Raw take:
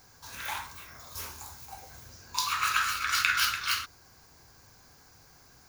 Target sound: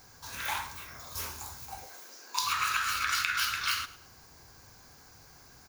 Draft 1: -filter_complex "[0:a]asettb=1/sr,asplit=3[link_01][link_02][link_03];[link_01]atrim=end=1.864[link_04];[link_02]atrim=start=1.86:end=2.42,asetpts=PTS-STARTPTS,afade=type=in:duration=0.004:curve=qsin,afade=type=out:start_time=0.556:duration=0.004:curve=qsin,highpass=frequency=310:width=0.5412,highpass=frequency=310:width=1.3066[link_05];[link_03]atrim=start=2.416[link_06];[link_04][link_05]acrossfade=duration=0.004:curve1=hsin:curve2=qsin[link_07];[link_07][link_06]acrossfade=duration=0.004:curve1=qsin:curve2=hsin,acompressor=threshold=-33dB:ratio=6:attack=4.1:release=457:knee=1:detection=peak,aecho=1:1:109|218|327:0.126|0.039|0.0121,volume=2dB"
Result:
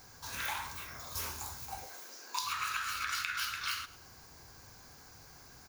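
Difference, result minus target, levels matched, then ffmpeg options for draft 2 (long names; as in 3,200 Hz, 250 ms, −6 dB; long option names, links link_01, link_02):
downward compressor: peak gain reduction +6 dB
-filter_complex "[0:a]asettb=1/sr,asplit=3[link_01][link_02][link_03];[link_01]atrim=end=1.864[link_04];[link_02]atrim=start=1.86:end=2.42,asetpts=PTS-STARTPTS,afade=type=in:duration=0.004:curve=qsin,afade=type=out:start_time=0.556:duration=0.004:curve=qsin,highpass=frequency=310:width=0.5412,highpass=frequency=310:width=1.3066[link_05];[link_03]atrim=start=2.416[link_06];[link_04][link_05]acrossfade=duration=0.004:curve1=hsin:curve2=qsin[link_07];[link_07][link_06]acrossfade=duration=0.004:curve1=qsin:curve2=hsin,acompressor=threshold=-25.5dB:ratio=6:attack=4.1:release=457:knee=1:detection=peak,aecho=1:1:109|218|327:0.126|0.039|0.0121,volume=2dB"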